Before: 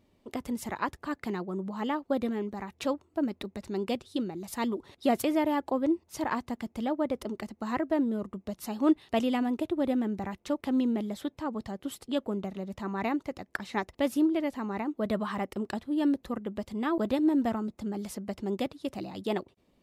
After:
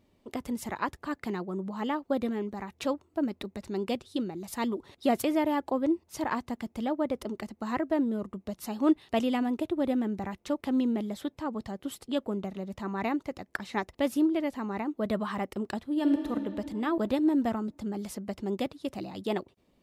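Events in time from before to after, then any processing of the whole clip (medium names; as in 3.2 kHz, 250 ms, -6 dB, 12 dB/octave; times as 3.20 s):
15.89–16.30 s: reverb throw, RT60 2.8 s, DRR 4 dB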